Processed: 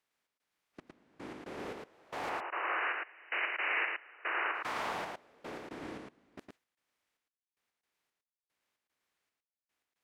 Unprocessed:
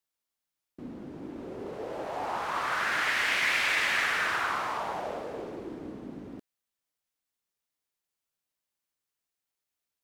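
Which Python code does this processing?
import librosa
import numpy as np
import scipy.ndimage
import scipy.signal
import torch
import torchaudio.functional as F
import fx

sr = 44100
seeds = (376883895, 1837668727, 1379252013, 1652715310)

y = fx.bin_compress(x, sr, power=0.6)
y = fx.noise_reduce_blind(y, sr, reduce_db=14)
y = fx.step_gate(y, sr, bpm=113, pattern='xx.xxx...x.xx...', floor_db=-24.0, edge_ms=4.5)
y = fx.brickwall_bandpass(y, sr, low_hz=300.0, high_hz=3000.0, at=(2.29, 4.55))
y = y + 10.0 ** (-3.5 / 20.0) * np.pad(y, (int(111 * sr / 1000.0), 0))[:len(y)]
y = y * 10.0 ** (-8.5 / 20.0)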